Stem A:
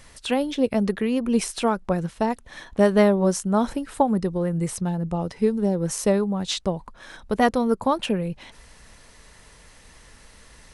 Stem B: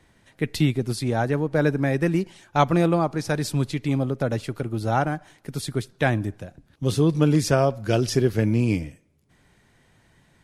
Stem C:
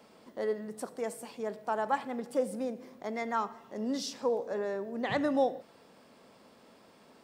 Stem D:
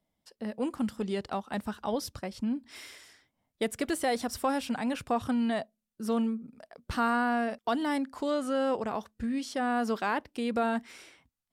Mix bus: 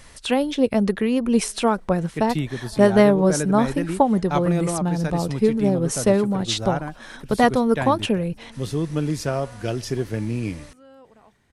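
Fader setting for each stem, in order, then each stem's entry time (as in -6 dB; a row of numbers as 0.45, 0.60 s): +2.5, -5.0, -16.5, -20.0 dB; 0.00, 1.75, 0.95, 2.30 s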